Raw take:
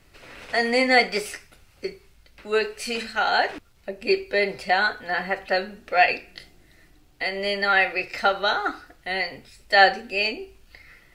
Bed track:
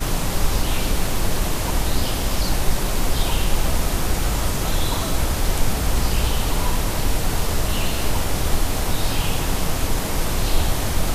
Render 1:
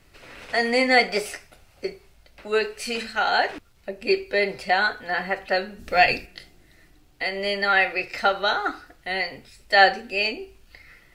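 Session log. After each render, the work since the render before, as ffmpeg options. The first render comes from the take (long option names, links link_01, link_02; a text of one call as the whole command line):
ffmpeg -i in.wav -filter_complex "[0:a]asettb=1/sr,asplit=3[link_01][link_02][link_03];[link_01]atrim=end=1.084[link_04];[link_02]atrim=start=1.08:end=2.48,asetpts=PTS-STARTPTS,afade=type=in:duration=0.004:curve=qsin,afade=type=out:start_time=1.396:duration=0.004:curve=qsin,equalizer=frequency=670:width_type=o:width=0.67:gain=7.5[link_05];[link_03]atrim=start=2.476[link_06];[link_04][link_05]acrossfade=duration=0.004:curve1=hsin:curve2=qsin[link_07];[link_07][link_06]acrossfade=duration=0.004:curve1=qsin:curve2=hsin,asplit=3[link_08][link_09][link_10];[link_08]afade=type=out:start_time=5.78:duration=0.02[link_11];[link_09]bass=frequency=250:gain=13,treble=frequency=4000:gain=9,afade=type=in:start_time=5.78:duration=0.02,afade=type=out:start_time=6.25:duration=0.02[link_12];[link_10]afade=type=in:start_time=6.25:duration=0.02[link_13];[link_11][link_12][link_13]amix=inputs=3:normalize=0" out.wav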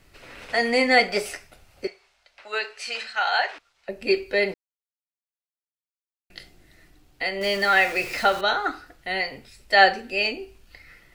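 ffmpeg -i in.wav -filter_complex "[0:a]asettb=1/sr,asplit=3[link_01][link_02][link_03];[link_01]atrim=end=1.874[link_04];[link_02]atrim=start=1.87:end=3.89,asetpts=PTS-STARTPTS,afade=type=in:duration=0.004:curve=qsin,afade=type=out:start_time=2.016:duration=0.004:curve=qsin,acrossover=split=590 7900:gain=0.0708 1 0.112[link_05][link_06][link_07];[link_05][link_06][link_07]amix=inputs=3:normalize=0[link_08];[link_03]atrim=start=3.886[link_09];[link_04][link_08]acrossfade=duration=0.004:curve1=hsin:curve2=qsin[link_10];[link_10][link_09]acrossfade=duration=0.004:curve1=qsin:curve2=hsin,asettb=1/sr,asplit=3[link_11][link_12][link_13];[link_11]atrim=end=7.414[link_14];[link_12]atrim=start=7.41:end=8.41,asetpts=PTS-STARTPTS,afade=type=in:duration=0.004:curve=qsin,afade=type=out:start_time=0.996:duration=0.004:curve=qsin,aeval=exprs='val(0)+0.5*0.0251*sgn(val(0))':channel_layout=same[link_15];[link_13]atrim=start=8.406[link_16];[link_14][link_15]acrossfade=duration=0.004:curve1=hsin:curve2=qsin[link_17];[link_17][link_16]acrossfade=duration=0.004:curve1=qsin:curve2=hsin,asplit=3[link_18][link_19][link_20];[link_18]atrim=end=4.54,asetpts=PTS-STARTPTS,afade=type=out:start_time=4.536:duration=0.004:curve=hsin[link_21];[link_19]atrim=start=4.54:end=6.3,asetpts=PTS-STARTPTS,volume=0[link_22];[link_20]atrim=start=6.3,asetpts=PTS-STARTPTS,afade=type=in:duration=0.004:curve=hsin[link_23];[link_21][link_22][link_23]concat=n=3:v=0:a=1" out.wav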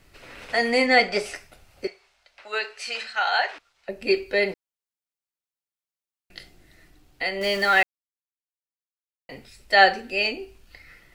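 ffmpeg -i in.wav -filter_complex "[0:a]asettb=1/sr,asplit=3[link_01][link_02][link_03];[link_01]atrim=end=0.864[link_04];[link_02]atrim=start=0.86:end=1.35,asetpts=PTS-STARTPTS,afade=type=in:duration=0.004:curve=qsin,afade=type=out:start_time=0.486:duration=0.004:curve=qsin,lowpass=8000[link_05];[link_03]atrim=start=1.346[link_06];[link_04][link_05]acrossfade=duration=0.004:curve1=hsin:curve2=qsin[link_07];[link_07][link_06]acrossfade=duration=0.004:curve1=qsin:curve2=hsin,asplit=3[link_08][link_09][link_10];[link_08]atrim=end=7.83,asetpts=PTS-STARTPTS,afade=type=out:start_time=7.826:duration=0.004:curve=hsin[link_11];[link_09]atrim=start=7.83:end=9.29,asetpts=PTS-STARTPTS,volume=0[link_12];[link_10]atrim=start=9.29,asetpts=PTS-STARTPTS,afade=type=in:duration=0.004:curve=hsin[link_13];[link_11][link_12][link_13]concat=n=3:v=0:a=1" out.wav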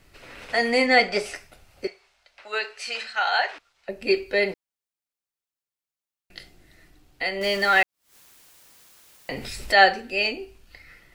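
ffmpeg -i in.wav -filter_complex "[0:a]asettb=1/sr,asplit=3[link_01][link_02][link_03];[link_01]atrim=end=7.764[link_04];[link_02]atrim=start=7.76:end=9.86,asetpts=PTS-STARTPTS,afade=type=in:duration=0.004:curve=qsin,afade=type=out:start_time=2.096:duration=0.004:curve=qsin,acompressor=mode=upward:threshold=-20dB:ratio=2.5:attack=3.2:release=140:knee=2.83:detection=peak[link_05];[link_03]atrim=start=9.856[link_06];[link_04][link_05]acrossfade=duration=0.004:curve1=hsin:curve2=qsin[link_07];[link_07][link_06]acrossfade=duration=0.004:curve1=qsin:curve2=hsin" out.wav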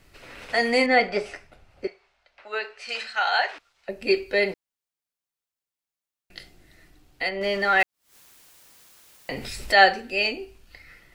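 ffmpeg -i in.wav -filter_complex "[0:a]asettb=1/sr,asplit=3[link_01][link_02][link_03];[link_01]atrim=end=0.864[link_04];[link_02]atrim=start=0.86:end=2.89,asetpts=PTS-STARTPTS,afade=type=in:duration=0.004:curve=qsin,afade=type=out:start_time=2.026:duration=0.004:curve=qsin,aemphasis=mode=reproduction:type=75kf[link_05];[link_03]atrim=start=2.886[link_06];[link_04][link_05]acrossfade=duration=0.004:curve1=hsin:curve2=qsin[link_07];[link_07][link_06]acrossfade=duration=0.004:curve1=qsin:curve2=hsin,asplit=3[link_08][link_09][link_10];[link_08]afade=type=out:start_time=7.28:duration=0.02[link_11];[link_09]lowpass=frequency=2300:poles=1,afade=type=in:start_time=7.28:duration=0.02,afade=type=out:start_time=7.79:duration=0.02[link_12];[link_10]afade=type=in:start_time=7.79:duration=0.02[link_13];[link_11][link_12][link_13]amix=inputs=3:normalize=0" out.wav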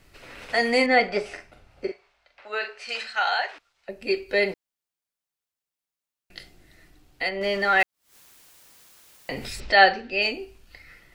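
ffmpeg -i in.wav -filter_complex "[0:a]asettb=1/sr,asplit=3[link_01][link_02][link_03];[link_01]atrim=end=1.274[link_04];[link_02]atrim=start=1.27:end=2.84,asetpts=PTS-STARTPTS,afade=type=in:duration=0.004:curve=qsin,afade=type=out:start_time=1.566:duration=0.004:curve=qsin,asplit=2[link_05][link_06];[link_06]adelay=43,volume=-6dB[link_07];[link_05][link_07]amix=inputs=2:normalize=0,atrim=end_sample=69237[link_08];[link_03]atrim=start=2.836[link_09];[link_04][link_08]acrossfade=duration=0.004:curve1=hsin:curve2=qsin[link_10];[link_10][link_09]acrossfade=duration=0.004:curve1=qsin:curve2=hsin,asettb=1/sr,asplit=3[link_11][link_12][link_13];[link_11]atrim=end=9.604[link_14];[link_12]atrim=start=9.6:end=10.22,asetpts=PTS-STARTPTS,afade=type=in:duration=0.004:curve=qsin,afade=type=out:start_time=0.616:duration=0.004:curve=qsin,lowpass=frequency=5200:width=0.5412,lowpass=frequency=5200:width=1.3066[link_15];[link_13]atrim=start=10.216[link_16];[link_14][link_15]acrossfade=duration=0.004:curve1=hsin:curve2=qsin[link_17];[link_17][link_16]acrossfade=duration=0.004:curve1=qsin:curve2=hsin,asplit=3[link_18][link_19][link_20];[link_18]atrim=end=3.342[link_21];[link_19]atrim=start=3.338:end=4.292,asetpts=PTS-STARTPTS,volume=-3.5dB[link_22];[link_20]atrim=start=4.288[link_23];[link_21][link_22]acrossfade=duration=0.004:curve1=hsin:curve2=hsin[link_24];[link_24][link_23]acrossfade=duration=0.004:curve1=hsin:curve2=hsin" out.wav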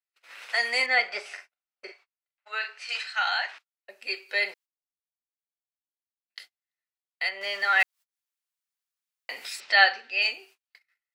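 ffmpeg -i in.wav -af "agate=range=-37dB:threshold=-44dB:ratio=16:detection=peak,highpass=1100" out.wav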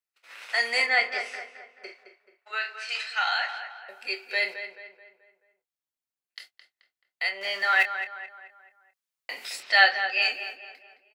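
ffmpeg -i in.wav -filter_complex "[0:a]asplit=2[link_01][link_02];[link_02]adelay=26,volume=-9.5dB[link_03];[link_01][link_03]amix=inputs=2:normalize=0,asplit=2[link_04][link_05];[link_05]adelay=216,lowpass=frequency=2700:poles=1,volume=-9dB,asplit=2[link_06][link_07];[link_07]adelay=216,lowpass=frequency=2700:poles=1,volume=0.47,asplit=2[link_08][link_09];[link_09]adelay=216,lowpass=frequency=2700:poles=1,volume=0.47,asplit=2[link_10][link_11];[link_11]adelay=216,lowpass=frequency=2700:poles=1,volume=0.47,asplit=2[link_12][link_13];[link_13]adelay=216,lowpass=frequency=2700:poles=1,volume=0.47[link_14];[link_06][link_08][link_10][link_12][link_14]amix=inputs=5:normalize=0[link_15];[link_04][link_15]amix=inputs=2:normalize=0" out.wav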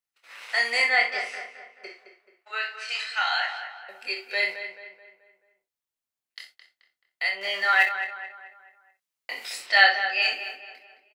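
ffmpeg -i in.wav -af "aecho=1:1:25|62:0.473|0.316" out.wav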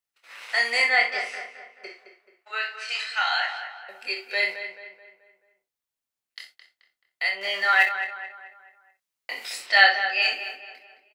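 ffmpeg -i in.wav -af "volume=1dB" out.wav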